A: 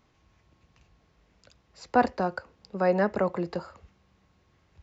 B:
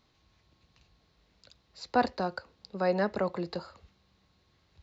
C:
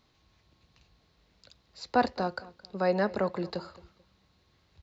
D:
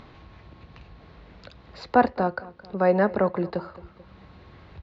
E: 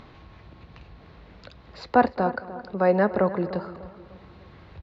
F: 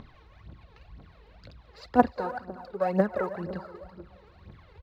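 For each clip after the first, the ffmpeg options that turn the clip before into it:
-af "equalizer=f=4.1k:w=2.3:g=11.5,volume=-4dB"
-filter_complex "[0:a]asplit=2[a][b];[b]adelay=219,lowpass=f=4.5k:p=1,volume=-19.5dB,asplit=2[c][d];[d]adelay=219,lowpass=f=4.5k:p=1,volume=0.29[e];[a][c][e]amix=inputs=3:normalize=0,volume=1dB"
-filter_complex "[0:a]lowpass=2.1k,asplit=2[a][b];[b]acompressor=mode=upward:threshold=-34dB:ratio=2.5,volume=1dB[c];[a][c]amix=inputs=2:normalize=0"
-filter_complex "[0:a]asplit=2[a][b];[b]adelay=299,lowpass=f=2.1k:p=1,volume=-14.5dB,asplit=2[c][d];[d]adelay=299,lowpass=f=2.1k:p=1,volume=0.41,asplit=2[e][f];[f]adelay=299,lowpass=f=2.1k:p=1,volume=0.41,asplit=2[g][h];[h]adelay=299,lowpass=f=2.1k:p=1,volume=0.41[i];[a][c][e][g][i]amix=inputs=5:normalize=0"
-af "aecho=1:1:362:0.15,aphaser=in_gain=1:out_gain=1:delay=2.5:decay=0.74:speed=2:type=triangular,volume=-9dB"

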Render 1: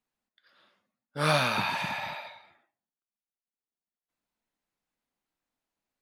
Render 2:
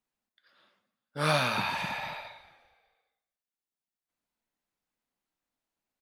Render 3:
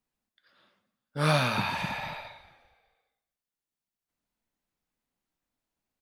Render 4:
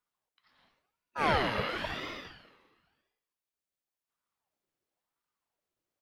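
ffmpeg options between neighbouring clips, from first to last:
-filter_complex "[0:a]asplit=5[a][b][c][d][e];[b]adelay=201,afreqshift=-32,volume=-22.5dB[f];[c]adelay=402,afreqshift=-64,volume=-27.1dB[g];[d]adelay=603,afreqshift=-96,volume=-31.7dB[h];[e]adelay=804,afreqshift=-128,volume=-36.2dB[i];[a][f][g][h][i]amix=inputs=5:normalize=0,volume=-1.5dB"
-af "lowshelf=f=230:g=8"
-filter_complex "[0:a]acrossover=split=3500[a][b];[b]acompressor=threshold=-48dB:ratio=4:attack=1:release=60[c];[a][c]amix=inputs=2:normalize=0,aeval=exprs='val(0)*sin(2*PI*770*n/s+770*0.6/0.95*sin(2*PI*0.95*n/s))':c=same"

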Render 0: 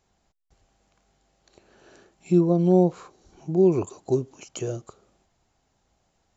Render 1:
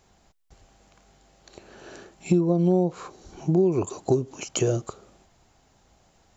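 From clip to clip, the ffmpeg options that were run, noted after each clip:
-af "acompressor=threshold=-27dB:ratio=6,volume=9dB"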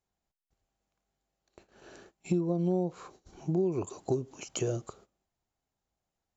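-af "agate=range=-18dB:threshold=-47dB:ratio=16:detection=peak,volume=-8dB"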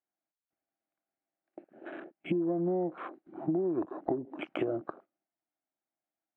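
-af "highpass=260,equalizer=f=310:t=q:w=4:g=10,equalizer=f=440:t=q:w=4:g=-9,equalizer=f=650:t=q:w=4:g=5,equalizer=f=1k:t=q:w=4:g=-3,equalizer=f=1.5k:t=q:w=4:g=3,equalizer=f=2.1k:t=q:w=4:g=3,lowpass=f=2.4k:w=0.5412,lowpass=f=2.4k:w=1.3066,acompressor=threshold=-37dB:ratio=5,afwtdn=0.00251,volume=8.5dB"

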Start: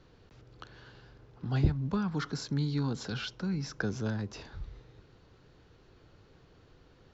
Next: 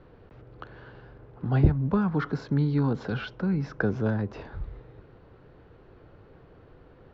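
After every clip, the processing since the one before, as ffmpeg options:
-af "lowpass=2k,equalizer=f=550:w=1.2:g=3.5,volume=6dB"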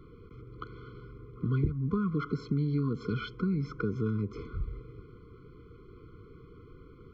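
-af "acompressor=threshold=-29dB:ratio=4,afftfilt=real='re*eq(mod(floor(b*sr/1024/500),2),0)':imag='im*eq(mod(floor(b*sr/1024/500),2),0)':win_size=1024:overlap=0.75,volume=2dB"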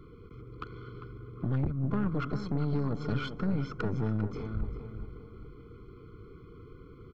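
-filter_complex "[0:a]aeval=exprs='(tanh(28.2*val(0)+0.55)-tanh(0.55))/28.2':c=same,asplit=2[a][b];[b]adelay=399,lowpass=f=1.9k:p=1,volume=-9dB,asplit=2[c][d];[d]adelay=399,lowpass=f=1.9k:p=1,volume=0.41,asplit=2[e][f];[f]adelay=399,lowpass=f=1.9k:p=1,volume=0.41,asplit=2[g][h];[h]adelay=399,lowpass=f=1.9k:p=1,volume=0.41,asplit=2[i][j];[j]adelay=399,lowpass=f=1.9k:p=1,volume=0.41[k];[a][c][e][g][i][k]amix=inputs=6:normalize=0,volume=3.5dB"

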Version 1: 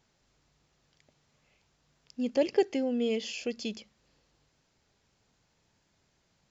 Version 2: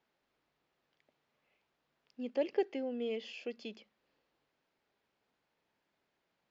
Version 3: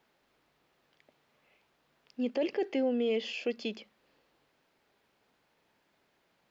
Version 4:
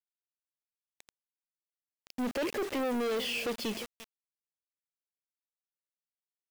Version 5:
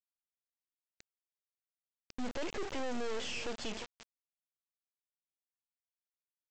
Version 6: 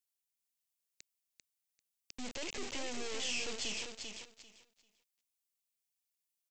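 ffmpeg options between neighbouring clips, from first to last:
-filter_complex "[0:a]acrossover=split=230 3900:gain=0.158 1 0.1[a][b][c];[a][b][c]amix=inputs=3:normalize=0,volume=-6dB"
-af "alimiter=level_in=7.5dB:limit=-24dB:level=0:latency=1:release=10,volume=-7.5dB,volume=9dB"
-af "aecho=1:1:348:0.0794,acrusher=bits=7:mix=0:aa=0.000001,asoftclip=type=tanh:threshold=-38dB,volume=8.5dB"
-af "alimiter=level_in=9dB:limit=-24dB:level=0:latency=1,volume=-9dB,aresample=16000,acrusher=bits=5:dc=4:mix=0:aa=0.000001,aresample=44100,volume=1.5dB"
-filter_complex "[0:a]acrossover=split=410[a][b];[b]aexciter=amount=2.8:drive=6.1:freq=2.1k[c];[a][c]amix=inputs=2:normalize=0,aecho=1:1:393|786|1179:0.501|0.0952|0.0181,volume=-6dB"

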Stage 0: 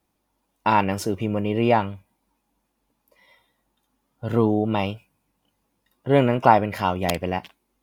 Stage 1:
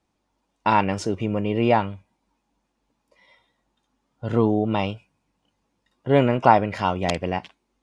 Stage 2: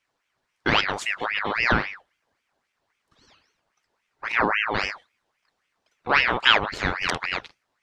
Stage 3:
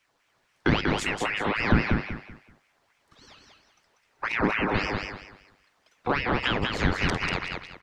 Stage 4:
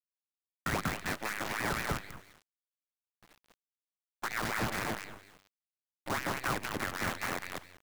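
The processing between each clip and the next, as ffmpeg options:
-af "lowpass=f=8k:w=0.5412,lowpass=f=8k:w=1.3066"
-af "equalizer=f=3.6k:t=o:w=0.99:g=5.5,aeval=exprs='val(0)*sin(2*PI*1500*n/s+1500*0.6/3.7*sin(2*PI*3.7*n/s))':c=same"
-filter_complex "[0:a]acrossover=split=360[a][b];[b]acompressor=threshold=-32dB:ratio=6[c];[a][c]amix=inputs=2:normalize=0,asplit=2[d][e];[e]aecho=0:1:191|382|573|764:0.631|0.177|0.0495|0.0139[f];[d][f]amix=inputs=2:normalize=0,volume=5.5dB"
-filter_complex "[0:a]highpass=f=270:t=q:w=0.5412,highpass=f=270:t=q:w=1.307,lowpass=f=2.5k:t=q:w=0.5176,lowpass=f=2.5k:t=q:w=0.7071,lowpass=f=2.5k:t=q:w=1.932,afreqshift=-180,acrossover=split=1700[a][b];[a]aeval=exprs='val(0)*(1-0.7/2+0.7/2*cos(2*PI*3.7*n/s))':c=same[c];[b]aeval=exprs='val(0)*(1-0.7/2-0.7/2*cos(2*PI*3.7*n/s))':c=same[d];[c][d]amix=inputs=2:normalize=0,acrusher=bits=6:dc=4:mix=0:aa=0.000001,volume=-2dB"

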